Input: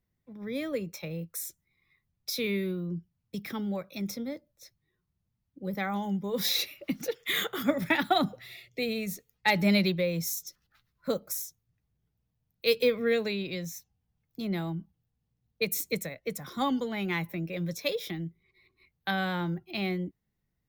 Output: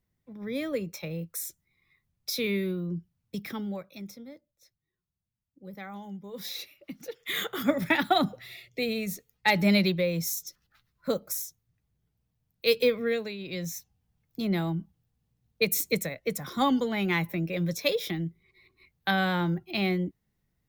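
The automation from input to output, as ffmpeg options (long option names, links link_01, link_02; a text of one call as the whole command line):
ffmpeg -i in.wav -af "volume=23.5dB,afade=type=out:start_time=3.35:duration=0.78:silence=0.281838,afade=type=in:start_time=7:duration=0.66:silence=0.281838,afade=type=out:start_time=12.84:duration=0.54:silence=0.375837,afade=type=in:start_time=13.38:duration=0.32:silence=0.281838" out.wav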